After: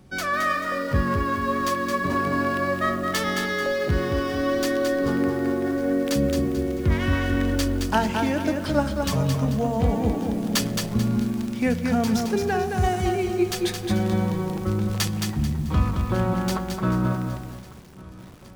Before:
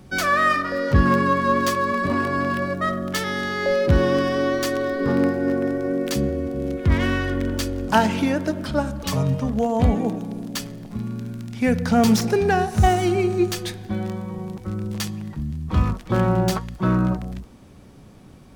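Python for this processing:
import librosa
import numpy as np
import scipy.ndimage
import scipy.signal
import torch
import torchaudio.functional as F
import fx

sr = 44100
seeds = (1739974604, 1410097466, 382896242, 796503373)

p1 = fx.rider(x, sr, range_db=10, speed_s=0.5)
p2 = p1 + fx.echo_feedback(p1, sr, ms=1149, feedback_pct=58, wet_db=-22.5, dry=0)
p3 = fx.echo_crushed(p2, sr, ms=219, feedback_pct=35, bits=7, wet_db=-4.5)
y = F.gain(torch.from_numpy(p3), -3.0).numpy()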